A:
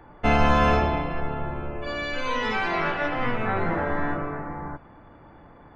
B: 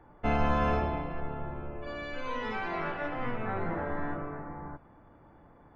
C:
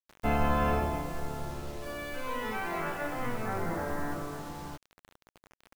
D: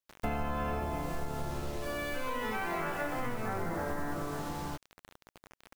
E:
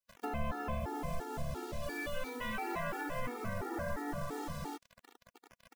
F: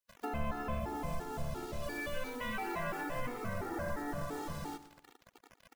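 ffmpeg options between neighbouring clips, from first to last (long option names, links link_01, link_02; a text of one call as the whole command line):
ffmpeg -i in.wav -af "highshelf=frequency=2500:gain=-9,volume=-7dB" out.wav
ffmpeg -i in.wav -af "acrusher=bits=7:mix=0:aa=0.000001" out.wav
ffmpeg -i in.wav -af "acompressor=threshold=-34dB:ratio=6,volume=3.5dB" out.wav
ffmpeg -i in.wav -af "afftfilt=real='re*gt(sin(2*PI*2.9*pts/sr)*(1-2*mod(floor(b*sr/1024/240),2)),0)':imag='im*gt(sin(2*PI*2.9*pts/sr)*(1-2*mod(floor(b*sr/1024/240),2)),0)':win_size=1024:overlap=0.75" out.wav
ffmpeg -i in.wav -af "aecho=1:1:115|230|345|460:0.2|0.0818|0.0335|0.0138" out.wav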